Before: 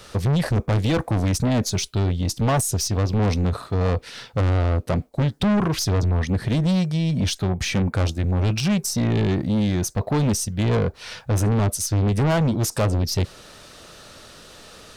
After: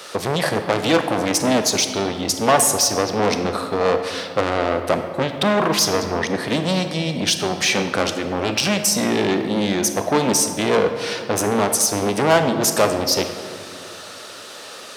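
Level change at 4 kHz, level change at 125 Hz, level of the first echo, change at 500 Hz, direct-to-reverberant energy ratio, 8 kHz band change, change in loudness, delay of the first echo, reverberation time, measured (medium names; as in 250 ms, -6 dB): +8.5 dB, -9.5 dB, no echo, +7.5 dB, 7.0 dB, +8.5 dB, +3.0 dB, no echo, 2.1 s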